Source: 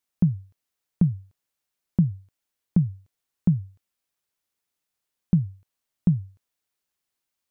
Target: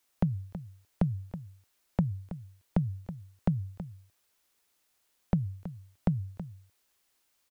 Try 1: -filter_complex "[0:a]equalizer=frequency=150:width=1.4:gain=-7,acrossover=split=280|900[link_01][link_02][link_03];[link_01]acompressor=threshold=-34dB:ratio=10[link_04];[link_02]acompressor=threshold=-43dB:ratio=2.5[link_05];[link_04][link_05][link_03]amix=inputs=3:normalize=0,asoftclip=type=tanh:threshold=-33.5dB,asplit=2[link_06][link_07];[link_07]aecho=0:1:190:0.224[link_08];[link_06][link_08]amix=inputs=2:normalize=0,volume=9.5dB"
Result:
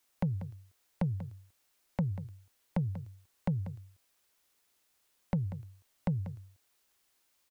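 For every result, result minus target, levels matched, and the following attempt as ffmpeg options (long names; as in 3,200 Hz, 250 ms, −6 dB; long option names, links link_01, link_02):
echo 134 ms early; soft clipping: distortion +12 dB
-filter_complex "[0:a]equalizer=frequency=150:width=1.4:gain=-7,acrossover=split=280|900[link_01][link_02][link_03];[link_01]acompressor=threshold=-34dB:ratio=10[link_04];[link_02]acompressor=threshold=-43dB:ratio=2.5[link_05];[link_04][link_05][link_03]amix=inputs=3:normalize=0,asoftclip=type=tanh:threshold=-33.5dB,asplit=2[link_06][link_07];[link_07]aecho=0:1:324:0.224[link_08];[link_06][link_08]amix=inputs=2:normalize=0,volume=9.5dB"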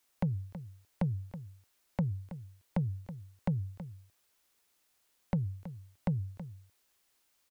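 soft clipping: distortion +12 dB
-filter_complex "[0:a]equalizer=frequency=150:width=1.4:gain=-7,acrossover=split=280|900[link_01][link_02][link_03];[link_01]acompressor=threshold=-34dB:ratio=10[link_04];[link_02]acompressor=threshold=-43dB:ratio=2.5[link_05];[link_04][link_05][link_03]amix=inputs=3:normalize=0,asoftclip=type=tanh:threshold=-22dB,asplit=2[link_06][link_07];[link_07]aecho=0:1:324:0.224[link_08];[link_06][link_08]amix=inputs=2:normalize=0,volume=9.5dB"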